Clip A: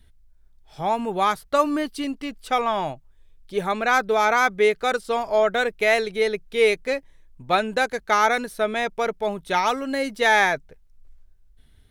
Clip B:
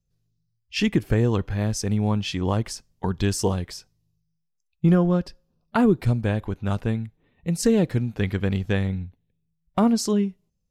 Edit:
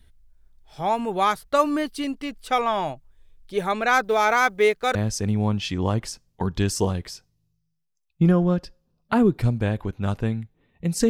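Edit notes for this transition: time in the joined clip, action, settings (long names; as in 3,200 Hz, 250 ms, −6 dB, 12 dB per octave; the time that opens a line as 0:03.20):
clip A
0:04.04–0:04.95: mu-law and A-law mismatch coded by A
0:04.95: continue with clip B from 0:01.58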